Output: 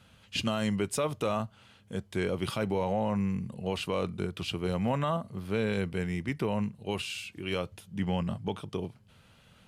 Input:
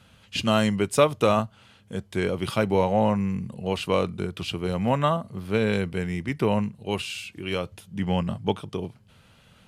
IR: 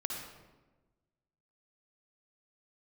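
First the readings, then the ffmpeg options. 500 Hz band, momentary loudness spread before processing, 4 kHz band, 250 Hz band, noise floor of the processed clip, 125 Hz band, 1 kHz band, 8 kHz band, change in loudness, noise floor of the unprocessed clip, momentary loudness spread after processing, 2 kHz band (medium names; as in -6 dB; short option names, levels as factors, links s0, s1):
-7.5 dB, 11 LU, -5.0 dB, -5.5 dB, -60 dBFS, -5.0 dB, -8.0 dB, -4.0 dB, -6.5 dB, -57 dBFS, 7 LU, -6.0 dB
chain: -af "alimiter=limit=0.168:level=0:latency=1:release=36,volume=0.668"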